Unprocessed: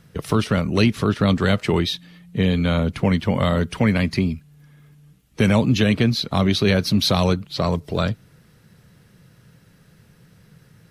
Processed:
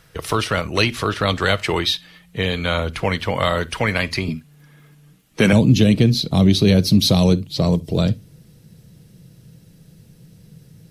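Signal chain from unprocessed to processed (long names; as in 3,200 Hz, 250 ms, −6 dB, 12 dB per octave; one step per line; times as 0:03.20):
parametric band 190 Hz −14.5 dB 1.8 octaves, from 0:04.28 67 Hz, from 0:05.53 1,400 Hz
convolution reverb, pre-delay 6 ms, DRR 14 dB
level +5.5 dB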